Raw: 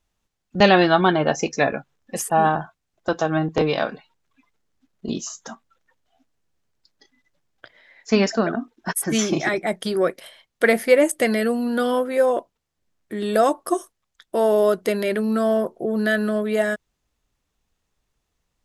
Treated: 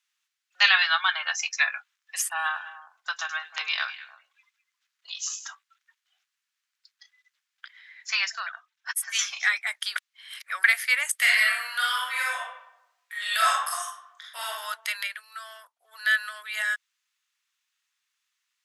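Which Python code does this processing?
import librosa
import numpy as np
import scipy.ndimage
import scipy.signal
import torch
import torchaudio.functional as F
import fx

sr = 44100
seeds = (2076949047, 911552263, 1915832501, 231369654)

y = fx.echo_stepped(x, sr, ms=103, hz=6000.0, octaves=-1.4, feedback_pct=70, wet_db=-9, at=(2.3, 5.46))
y = fx.upward_expand(y, sr, threshold_db=-30.0, expansion=1.5, at=(8.22, 9.43))
y = fx.reverb_throw(y, sr, start_s=11.17, length_s=3.29, rt60_s=0.85, drr_db=-5.5)
y = fx.upward_expand(y, sr, threshold_db=-31.0, expansion=1.5, at=(15.06, 15.91), fade=0.02)
y = fx.edit(y, sr, fx.reverse_span(start_s=9.96, length_s=0.68), tone=tone)
y = scipy.signal.sosfilt(scipy.signal.bessel(6, 2100.0, 'highpass', norm='mag', fs=sr, output='sos'), y)
y = fx.high_shelf(y, sr, hz=4000.0, db=-9.0)
y = y * librosa.db_to_amplitude(8.0)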